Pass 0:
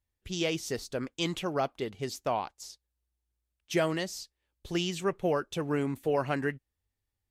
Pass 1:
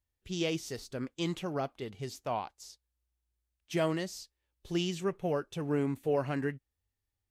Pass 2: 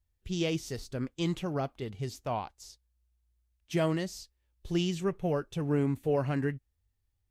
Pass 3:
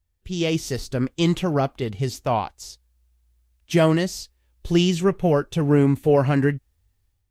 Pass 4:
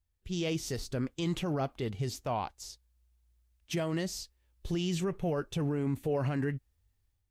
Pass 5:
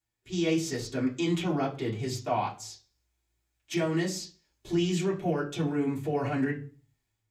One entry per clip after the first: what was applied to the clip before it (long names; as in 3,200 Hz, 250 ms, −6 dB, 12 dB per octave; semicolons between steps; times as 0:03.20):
harmonic and percussive parts rebalanced percussive −7 dB
low-shelf EQ 130 Hz +12 dB
automatic gain control gain up to 7.5 dB; level +3.5 dB
brickwall limiter −16.5 dBFS, peak gain reduction 11.5 dB; level −6.5 dB
convolution reverb RT60 0.40 s, pre-delay 3 ms, DRR −7.5 dB; level −2 dB